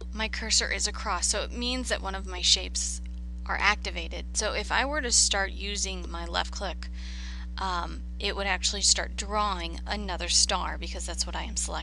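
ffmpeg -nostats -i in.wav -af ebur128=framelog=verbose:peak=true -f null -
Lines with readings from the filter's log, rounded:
Integrated loudness:
  I:         -27.2 LUFS
  Threshold: -37.5 LUFS
Loudness range:
  LRA:         2.3 LU
  Threshold: -47.5 LUFS
  LRA low:   -28.7 LUFS
  LRA high:  -26.5 LUFS
True peak:
  Peak:       -4.0 dBFS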